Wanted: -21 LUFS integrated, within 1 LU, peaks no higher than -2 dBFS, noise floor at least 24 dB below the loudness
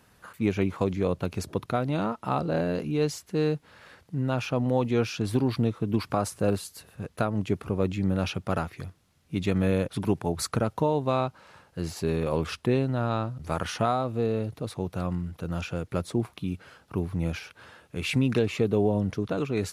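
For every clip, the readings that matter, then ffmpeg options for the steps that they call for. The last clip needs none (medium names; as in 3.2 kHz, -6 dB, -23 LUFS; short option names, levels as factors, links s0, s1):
loudness -28.5 LUFS; peak level -10.0 dBFS; loudness target -21.0 LUFS
-> -af "volume=2.37"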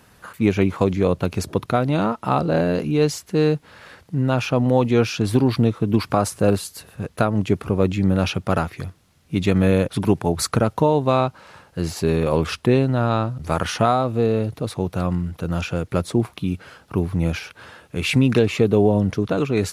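loudness -21.0 LUFS; peak level -2.5 dBFS; noise floor -55 dBFS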